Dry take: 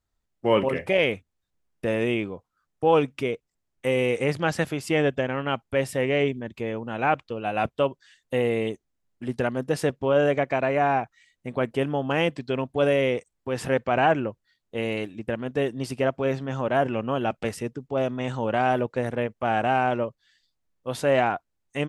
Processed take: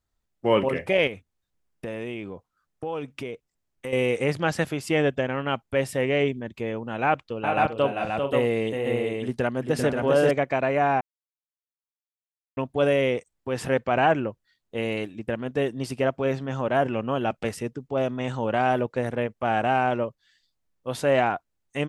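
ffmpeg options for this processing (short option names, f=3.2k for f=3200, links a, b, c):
-filter_complex "[0:a]asettb=1/sr,asplit=3[a][b][c];[a]atrim=end=1.074[d];[b]atrim=start=1.07:end=3.93,asetpts=PTS-STARTPTS,afade=t=in:d=0.004:c=qsin,afade=t=out:st=2.856:d=0.004:c=qsin,acompressor=threshold=-31dB:ratio=3:attack=3.2:release=140:knee=1:detection=peak[e];[c]atrim=start=3.926[f];[d][e]acrossfade=d=0.004:c1=hsin:c2=qsin[g];[g][f]acrossfade=d=0.004:c1=qsin:c2=hsin,asettb=1/sr,asplit=3[h][i][j];[h]atrim=end=7.044[k];[i]atrim=start=7.04:end=10.31,asetpts=PTS-STARTPTS,afade=t=in:d=0.004:c=qsin,afade=t=out:st=3.266:d=0.004:c=qsin,aecho=1:1:394|437|530|595:0.531|0.224|0.631|0.106,atrim=end_sample=144207[l];[j]atrim=start=10.306[m];[k][l]acrossfade=d=0.004:c1=hsin:c2=qsin[n];[n][m]acrossfade=d=0.004:c1=qsin:c2=hsin,asplit=3[o][p][q];[o]atrim=end=11.01,asetpts=PTS-STARTPTS,afade=t=out:st=11.006:d=0.004:c=hsin[r];[p]atrim=start=11.01:end=12.57,asetpts=PTS-STARTPTS,volume=0[s];[q]atrim=start=12.57,asetpts=PTS-STARTPTS,afade=t=in:d=0.004:c=hsin[t];[r][s][t]concat=n=3:v=0:a=1"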